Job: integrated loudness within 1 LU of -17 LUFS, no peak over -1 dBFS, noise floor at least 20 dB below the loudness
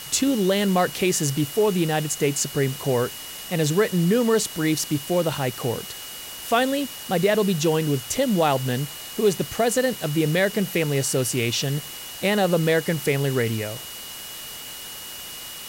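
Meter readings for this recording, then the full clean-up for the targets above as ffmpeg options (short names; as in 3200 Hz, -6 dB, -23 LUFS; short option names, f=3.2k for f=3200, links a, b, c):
steady tone 2900 Hz; tone level -40 dBFS; noise floor -37 dBFS; noise floor target -43 dBFS; loudness -23.0 LUFS; peak -8.0 dBFS; loudness target -17.0 LUFS
-> -af "bandreject=f=2.9k:w=30"
-af "afftdn=nr=6:nf=-37"
-af "volume=6dB"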